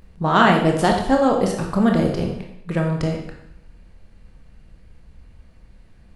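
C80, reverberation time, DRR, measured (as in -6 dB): 7.5 dB, 0.75 s, 1.0 dB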